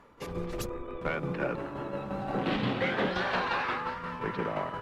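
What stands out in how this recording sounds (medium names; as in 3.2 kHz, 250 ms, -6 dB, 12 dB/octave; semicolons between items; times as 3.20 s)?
tremolo saw down 5.7 Hz, depth 50%; Opus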